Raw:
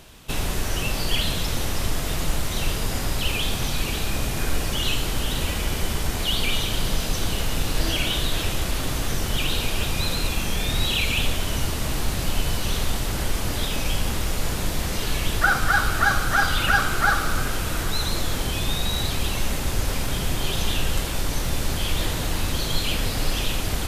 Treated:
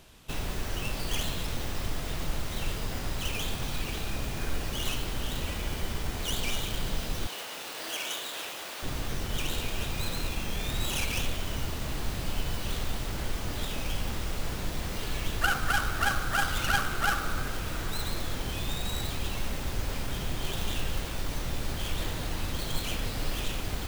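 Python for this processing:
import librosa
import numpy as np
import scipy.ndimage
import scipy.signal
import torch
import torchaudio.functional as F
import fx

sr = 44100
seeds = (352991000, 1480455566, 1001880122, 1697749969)

y = fx.tracing_dist(x, sr, depth_ms=0.19)
y = fx.highpass(y, sr, hz=520.0, slope=12, at=(7.27, 8.83))
y = y * librosa.db_to_amplitude(-7.5)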